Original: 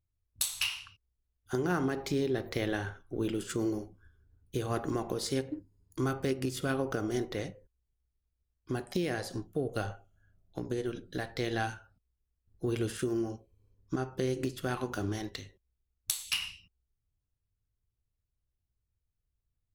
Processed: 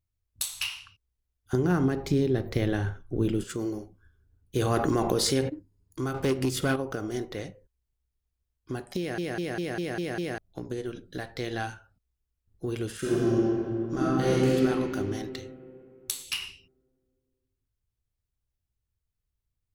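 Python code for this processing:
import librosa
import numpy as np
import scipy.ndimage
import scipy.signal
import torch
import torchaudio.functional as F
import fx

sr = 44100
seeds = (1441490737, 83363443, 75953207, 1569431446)

y = fx.low_shelf(x, sr, hz=300.0, db=11.5, at=(1.53, 3.44))
y = fx.env_flatten(y, sr, amount_pct=70, at=(4.55, 5.48), fade=0.02)
y = fx.leveller(y, sr, passes=2, at=(6.14, 6.76))
y = fx.reverb_throw(y, sr, start_s=12.99, length_s=1.55, rt60_s=2.7, drr_db=-10.0)
y = fx.edit(y, sr, fx.stutter_over(start_s=8.98, slice_s=0.2, count=7), tone=tone)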